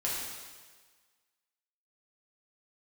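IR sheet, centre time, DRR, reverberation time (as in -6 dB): 90 ms, -6.5 dB, 1.5 s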